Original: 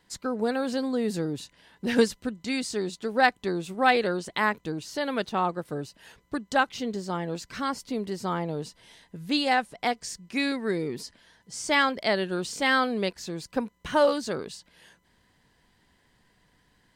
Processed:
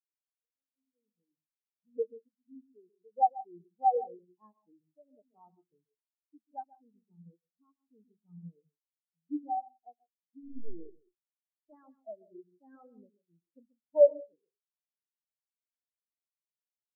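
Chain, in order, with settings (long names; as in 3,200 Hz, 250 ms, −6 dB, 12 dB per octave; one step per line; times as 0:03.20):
fade in at the beginning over 3.00 s
0:10.40–0:11.76: log-companded quantiser 2 bits
low-pass filter 1,100 Hz 12 dB per octave
multi-tap delay 135/174/179 ms −5.5/−16.5/−11 dB
rectangular room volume 390 cubic metres, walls furnished, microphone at 0.54 metres
every bin expanded away from the loudest bin 4 to 1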